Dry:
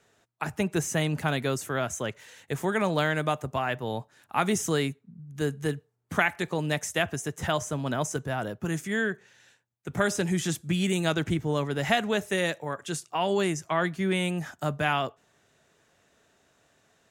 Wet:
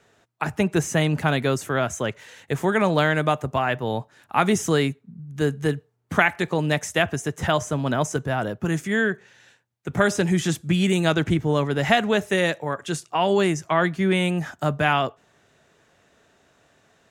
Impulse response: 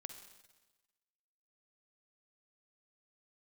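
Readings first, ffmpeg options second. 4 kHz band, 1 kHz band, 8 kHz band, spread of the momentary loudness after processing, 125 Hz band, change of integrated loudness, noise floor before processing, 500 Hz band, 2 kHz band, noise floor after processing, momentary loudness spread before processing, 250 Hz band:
+4.5 dB, +6.0 dB, +1.5 dB, 9 LU, +6.0 dB, +5.5 dB, −68 dBFS, +6.0 dB, +5.5 dB, −62 dBFS, 9 LU, +6.0 dB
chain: -af "highshelf=frequency=5800:gain=-7,volume=6dB"

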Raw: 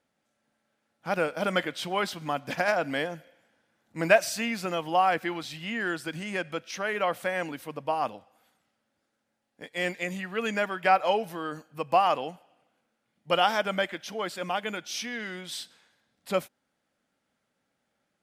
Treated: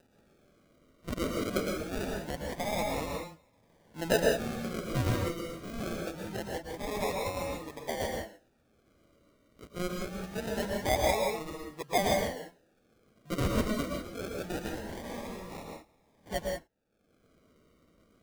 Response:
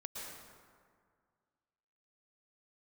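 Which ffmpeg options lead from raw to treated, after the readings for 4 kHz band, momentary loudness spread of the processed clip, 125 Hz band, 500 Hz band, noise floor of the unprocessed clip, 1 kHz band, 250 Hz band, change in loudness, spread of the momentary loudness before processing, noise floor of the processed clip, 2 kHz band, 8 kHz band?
−5.5 dB, 13 LU, +4.0 dB, −3.5 dB, −79 dBFS, −9.0 dB, 0.0 dB, −5.0 dB, 12 LU, −69 dBFS, −8.5 dB, −0.5 dB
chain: -filter_complex "[0:a]acrusher=samples=40:mix=1:aa=0.000001:lfo=1:lforange=24:lforate=0.24,acompressor=mode=upward:threshold=-44dB:ratio=2.5[link_01];[1:a]atrim=start_sample=2205,afade=type=out:start_time=0.25:duration=0.01,atrim=end_sample=11466[link_02];[link_01][link_02]afir=irnorm=-1:irlink=0,volume=-1.5dB"

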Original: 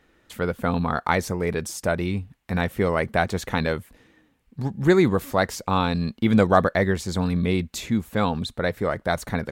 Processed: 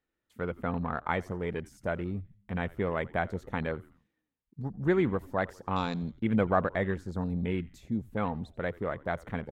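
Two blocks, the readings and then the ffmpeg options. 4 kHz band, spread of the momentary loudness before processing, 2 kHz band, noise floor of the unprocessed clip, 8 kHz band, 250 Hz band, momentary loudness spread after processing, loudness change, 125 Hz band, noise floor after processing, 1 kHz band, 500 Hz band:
−14.5 dB, 10 LU, −9.0 dB, −64 dBFS, below −20 dB, −8.5 dB, 10 LU, −8.5 dB, −8.5 dB, −85 dBFS, −8.5 dB, −8.5 dB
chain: -filter_complex "[0:a]afwtdn=0.0224,asplit=4[link_01][link_02][link_03][link_04];[link_02]adelay=86,afreqshift=-100,volume=-22dB[link_05];[link_03]adelay=172,afreqshift=-200,volume=-28.4dB[link_06];[link_04]adelay=258,afreqshift=-300,volume=-34.8dB[link_07];[link_01][link_05][link_06][link_07]amix=inputs=4:normalize=0,volume=-8.5dB"

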